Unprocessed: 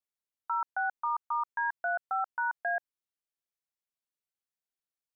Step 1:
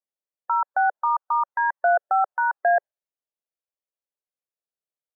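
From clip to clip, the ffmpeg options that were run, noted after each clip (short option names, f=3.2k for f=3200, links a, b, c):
-af "afftdn=nr=14:nf=-53,equalizer=f=550:t=o:w=1.2:g=14,volume=4.5dB"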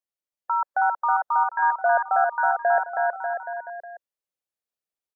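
-af "aecho=1:1:320|592|823.2|1020|1187:0.631|0.398|0.251|0.158|0.1,volume=-1.5dB"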